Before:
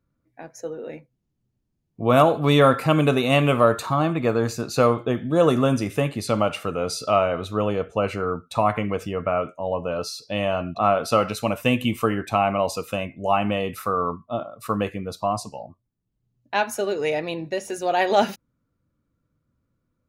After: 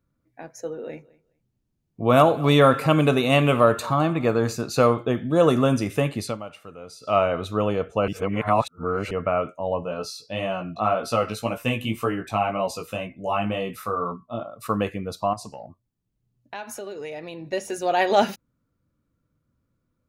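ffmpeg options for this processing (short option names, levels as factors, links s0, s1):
-filter_complex "[0:a]asplit=3[s0][s1][s2];[s0]afade=t=out:st=0.88:d=0.02[s3];[s1]aecho=1:1:209|418:0.0708|0.0135,afade=t=in:st=0.88:d=0.02,afade=t=out:st=4.55:d=0.02[s4];[s2]afade=t=in:st=4.55:d=0.02[s5];[s3][s4][s5]amix=inputs=3:normalize=0,asplit=3[s6][s7][s8];[s6]afade=t=out:st=9.82:d=0.02[s9];[s7]flanger=delay=16:depth=2.8:speed=1.9,afade=t=in:st=9.82:d=0.02,afade=t=out:st=14.4:d=0.02[s10];[s8]afade=t=in:st=14.4:d=0.02[s11];[s9][s10][s11]amix=inputs=3:normalize=0,asettb=1/sr,asplit=3[s12][s13][s14];[s12]atrim=end=15.334[s15];[s13]atrim=start=15.33:end=17.53,asetpts=PTS-STARTPTS,afade=t=in:d=0.004:c=qsin,afade=t=out:st=2.196:d=0.004:c=qsin,acompressor=threshold=0.0224:ratio=4:attack=3.2:release=140:knee=1:detection=peak[s16];[s14]atrim=start=17.526[s17];[s15][s16]acrossfade=d=0.004:c1=hsin:c2=qsin[s18];[s18][s17]acrossfade=d=0.004:c1=qsin:c2=hsin,asplit=5[s19][s20][s21][s22][s23];[s19]atrim=end=6.38,asetpts=PTS-STARTPTS,afade=t=out:st=6.21:d=0.17:silence=0.177828[s24];[s20]atrim=start=6.38:end=7.01,asetpts=PTS-STARTPTS,volume=0.178[s25];[s21]atrim=start=7.01:end=8.082,asetpts=PTS-STARTPTS,afade=t=in:d=0.17:silence=0.177828[s26];[s22]atrim=start=8.078:end=9.112,asetpts=PTS-STARTPTS,areverse[s27];[s23]atrim=start=9.108[s28];[s24][s25][s26]concat=n=3:v=0:a=1[s29];[s29][s27]acrossfade=d=0.004:c1=hsin:c2=hsin[s30];[s30][s28]acrossfade=d=0.004:c1=hsin:c2=hsin"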